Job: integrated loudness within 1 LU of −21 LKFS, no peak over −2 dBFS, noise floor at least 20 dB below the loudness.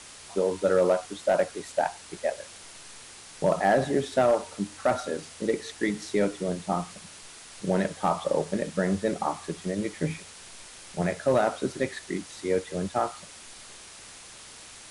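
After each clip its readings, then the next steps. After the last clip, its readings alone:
share of clipped samples 0.2%; peaks flattened at −14.5 dBFS; background noise floor −47 dBFS; target noise floor −48 dBFS; integrated loudness −28.0 LKFS; sample peak −14.5 dBFS; target loudness −21.0 LKFS
→ clipped peaks rebuilt −14.5 dBFS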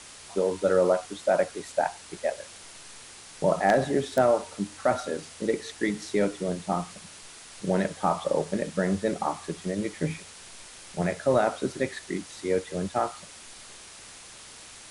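share of clipped samples 0.0%; background noise floor −47 dBFS; target noise floor −48 dBFS
→ broadband denoise 6 dB, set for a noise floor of −47 dBFS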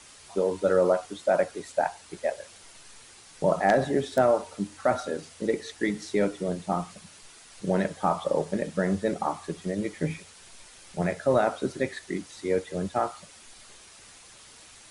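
background noise floor −51 dBFS; integrated loudness −28.0 LKFS; sample peak −5.5 dBFS; target loudness −21.0 LKFS
→ level +7 dB
brickwall limiter −2 dBFS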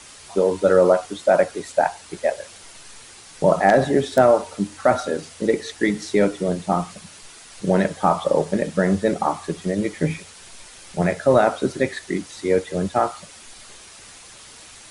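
integrated loudness −21.0 LKFS; sample peak −2.0 dBFS; background noise floor −44 dBFS

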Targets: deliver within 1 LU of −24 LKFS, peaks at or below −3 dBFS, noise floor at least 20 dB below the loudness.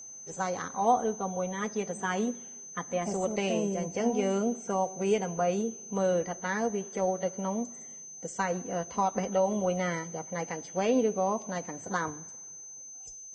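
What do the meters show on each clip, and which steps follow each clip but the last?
interfering tone 6,200 Hz; level of the tone −43 dBFS; integrated loudness −31.0 LKFS; sample peak −13.5 dBFS; target loudness −24.0 LKFS
→ notch filter 6,200 Hz, Q 30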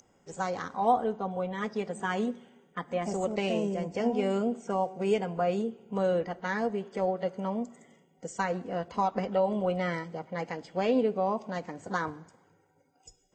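interfering tone none found; integrated loudness −31.0 LKFS; sample peak −14.0 dBFS; target loudness −24.0 LKFS
→ level +7 dB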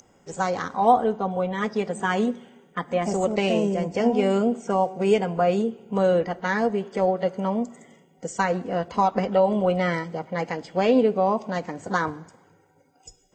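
integrated loudness −24.0 LKFS; sample peak −7.0 dBFS; background noise floor −60 dBFS

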